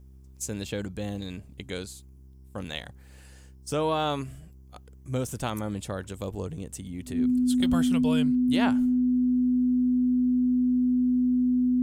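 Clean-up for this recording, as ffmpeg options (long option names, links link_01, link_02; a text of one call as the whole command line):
ffmpeg -i in.wav -af "bandreject=frequency=65.6:width_type=h:width=4,bandreject=frequency=131.2:width_type=h:width=4,bandreject=frequency=196.8:width_type=h:width=4,bandreject=frequency=262.4:width_type=h:width=4,bandreject=frequency=328:width_type=h:width=4,bandreject=frequency=393.6:width_type=h:width=4,bandreject=frequency=250:width=30" out.wav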